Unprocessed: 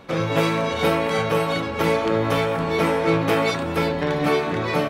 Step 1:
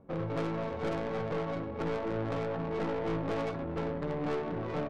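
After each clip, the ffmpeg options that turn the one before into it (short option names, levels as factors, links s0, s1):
-af "adynamicsmooth=sensitivity=0.5:basefreq=540,aeval=exprs='(tanh(11.2*val(0)+0.3)-tanh(0.3))/11.2':c=same,volume=0.422"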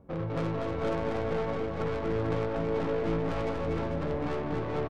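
-filter_complex "[0:a]equalizer=f=63:t=o:w=1.3:g=8.5,asplit=2[s0][s1];[s1]aecho=0:1:240|444|617.4|764.8|890.1:0.631|0.398|0.251|0.158|0.1[s2];[s0][s2]amix=inputs=2:normalize=0"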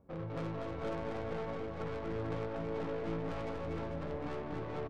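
-af "bandreject=f=50:t=h:w=6,bandreject=f=100:t=h:w=6,bandreject=f=150:t=h:w=6,bandreject=f=200:t=h:w=6,bandreject=f=250:t=h:w=6,bandreject=f=300:t=h:w=6,bandreject=f=350:t=h:w=6,bandreject=f=400:t=h:w=6,bandreject=f=450:t=h:w=6,volume=0.422"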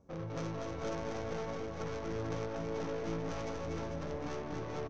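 -af "lowpass=f=6100:t=q:w=6.6"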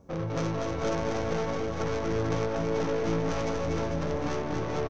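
-af "aecho=1:1:855:0.158,volume=2.82"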